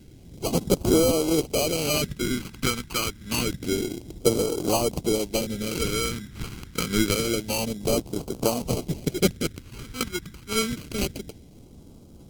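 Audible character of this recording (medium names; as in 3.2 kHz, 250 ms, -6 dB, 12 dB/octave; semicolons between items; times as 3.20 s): aliases and images of a low sample rate 1.8 kHz, jitter 0%; phasing stages 2, 0.27 Hz, lowest notch 590–1700 Hz; AAC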